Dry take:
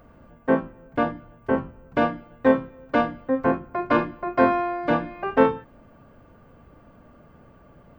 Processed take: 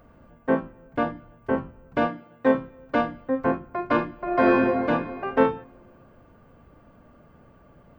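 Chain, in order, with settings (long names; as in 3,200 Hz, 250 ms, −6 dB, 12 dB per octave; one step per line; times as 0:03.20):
0:02.07–0:02.55: high-pass filter 130 Hz 12 dB per octave
0:04.14–0:04.66: thrown reverb, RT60 2.1 s, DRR −3.5 dB
level −2 dB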